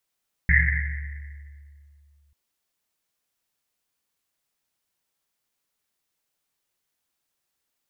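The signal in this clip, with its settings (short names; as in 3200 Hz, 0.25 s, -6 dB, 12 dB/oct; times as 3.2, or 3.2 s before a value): Risset drum length 1.84 s, pitch 72 Hz, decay 2.68 s, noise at 1900 Hz, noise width 440 Hz, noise 45%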